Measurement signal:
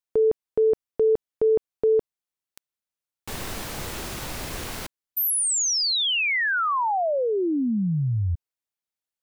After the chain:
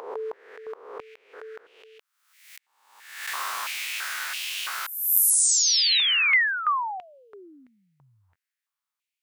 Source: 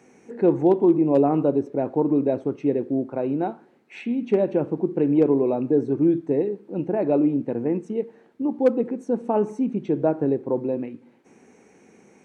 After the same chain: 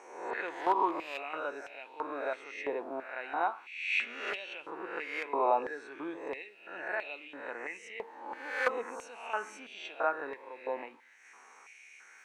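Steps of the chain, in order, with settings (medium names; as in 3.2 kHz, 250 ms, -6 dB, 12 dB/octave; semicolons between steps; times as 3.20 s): reverse spectral sustain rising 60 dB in 0.82 s; step-sequenced high-pass 3 Hz 960–2800 Hz; trim -1.5 dB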